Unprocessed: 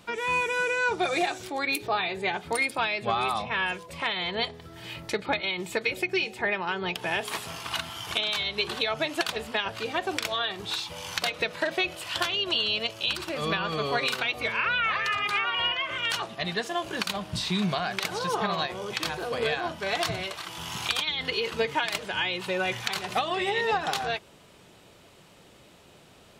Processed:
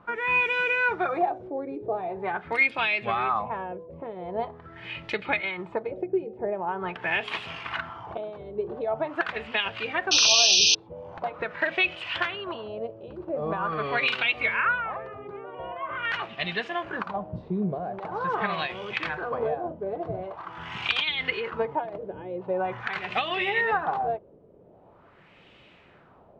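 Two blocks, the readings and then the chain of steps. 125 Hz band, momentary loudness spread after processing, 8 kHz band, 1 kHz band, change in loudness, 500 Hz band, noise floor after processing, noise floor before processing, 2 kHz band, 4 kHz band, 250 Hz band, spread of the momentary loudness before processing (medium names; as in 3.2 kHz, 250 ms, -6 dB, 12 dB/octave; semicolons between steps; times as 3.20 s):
-1.5 dB, 14 LU, +8.5 dB, +0.5 dB, +1.5 dB, +1.0 dB, -55 dBFS, -54 dBFS, +1.0 dB, +0.5 dB, -0.5 dB, 6 LU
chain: LFO low-pass sine 0.44 Hz 460–2800 Hz; painted sound noise, 10.11–10.75 s, 2.4–6.3 kHz -17 dBFS; trim -2 dB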